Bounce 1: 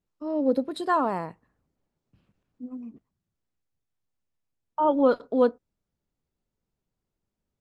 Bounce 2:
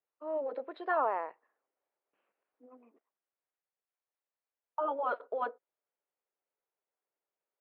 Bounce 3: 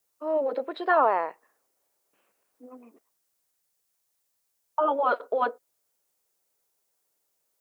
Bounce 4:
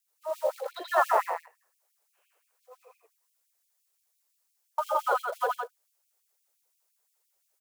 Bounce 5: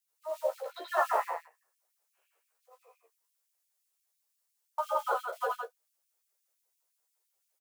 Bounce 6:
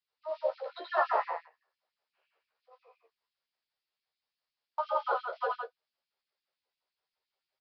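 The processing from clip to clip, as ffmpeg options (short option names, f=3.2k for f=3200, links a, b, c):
-af "lowpass=f=2.5k:w=0.5412,lowpass=f=2.5k:w=1.3066,afftfilt=real='re*lt(hypot(re,im),0.631)':imag='im*lt(hypot(re,im),0.631)':win_size=1024:overlap=0.75,highpass=f=460:w=0.5412,highpass=f=460:w=1.3066,volume=-2.5dB"
-af "bass=f=250:g=6,treble=f=4k:g=13,volume=8.5dB"
-af "acrusher=bits=6:mode=log:mix=0:aa=0.000001,aecho=1:1:81.63|166.2:0.891|0.562,afftfilt=real='re*gte(b*sr/1024,340*pow(2300/340,0.5+0.5*sin(2*PI*5.8*pts/sr)))':imag='im*gte(b*sr/1024,340*pow(2300/340,0.5+0.5*sin(2*PI*5.8*pts/sr)))':win_size=1024:overlap=0.75,volume=-2.5dB"
-af "aecho=1:1:13|33:0.708|0.178,volume=-6dB"
-af "aresample=11025,aresample=44100"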